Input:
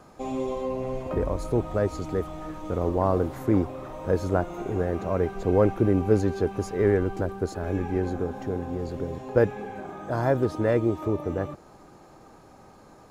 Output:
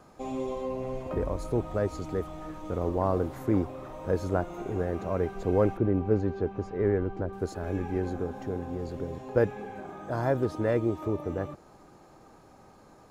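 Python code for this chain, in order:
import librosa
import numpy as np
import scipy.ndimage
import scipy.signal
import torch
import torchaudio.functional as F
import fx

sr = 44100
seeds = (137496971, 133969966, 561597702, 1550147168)

y = fx.spacing_loss(x, sr, db_at_10k=23, at=(5.77, 7.33))
y = y * librosa.db_to_amplitude(-3.5)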